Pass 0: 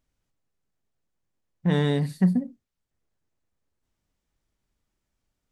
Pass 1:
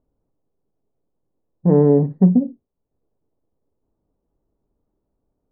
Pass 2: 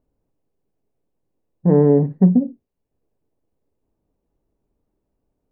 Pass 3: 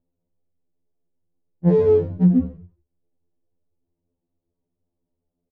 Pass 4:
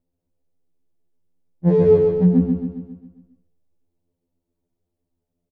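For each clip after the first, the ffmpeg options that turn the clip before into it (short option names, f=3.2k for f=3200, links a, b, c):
-af "lowpass=f=1k:w=0.5412,lowpass=f=1k:w=1.3066,equalizer=f=380:t=o:w=1.2:g=10,bandreject=f=360:w=12,volume=4.5dB"
-af "superequalizer=11b=1.58:12b=1.78"
-filter_complex "[0:a]adynamicsmooth=sensitivity=2.5:basefreq=970,asplit=5[a][b][c][d][e];[b]adelay=89,afreqshift=-52,volume=-10dB[f];[c]adelay=178,afreqshift=-104,volume=-19.6dB[g];[d]adelay=267,afreqshift=-156,volume=-29.3dB[h];[e]adelay=356,afreqshift=-208,volume=-38.9dB[i];[a][f][g][h][i]amix=inputs=5:normalize=0,afftfilt=real='re*2*eq(mod(b,4),0)':imag='im*2*eq(mod(b,4),0)':win_size=2048:overlap=0.75,volume=-2.5dB"
-af "aecho=1:1:135|270|405|540|675|810|945:0.596|0.31|0.161|0.0838|0.0436|0.0226|0.0118"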